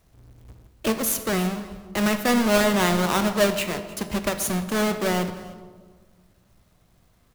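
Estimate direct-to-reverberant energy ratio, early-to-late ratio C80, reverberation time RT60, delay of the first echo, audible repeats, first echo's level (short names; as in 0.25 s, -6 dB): 8.0 dB, 11.0 dB, 1.5 s, 0.307 s, 1, -20.0 dB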